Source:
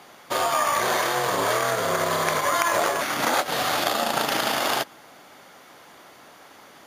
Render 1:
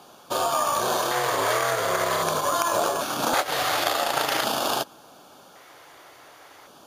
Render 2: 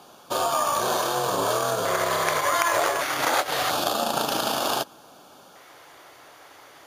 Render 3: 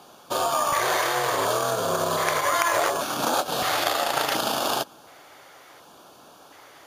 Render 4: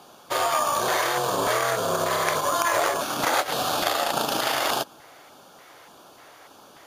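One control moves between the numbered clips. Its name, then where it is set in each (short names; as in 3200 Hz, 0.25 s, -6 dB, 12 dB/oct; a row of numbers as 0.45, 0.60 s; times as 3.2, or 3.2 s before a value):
LFO notch, rate: 0.45, 0.27, 0.69, 1.7 Hz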